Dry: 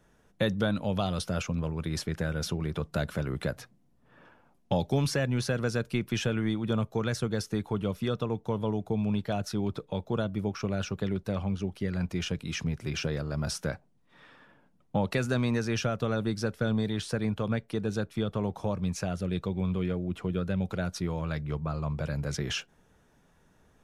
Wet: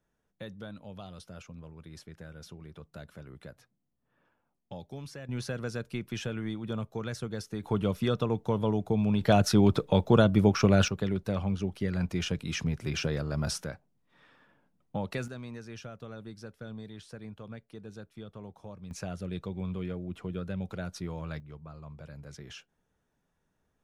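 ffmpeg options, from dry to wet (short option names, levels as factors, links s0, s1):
-af "asetnsamples=n=441:p=0,asendcmd='5.29 volume volume -6dB;7.63 volume volume 2dB;9.21 volume volume 9dB;10.88 volume volume 0.5dB;13.64 volume volume -6dB;15.28 volume volume -14.5dB;18.91 volume volume -5.5dB;21.4 volume volume -14dB',volume=0.168"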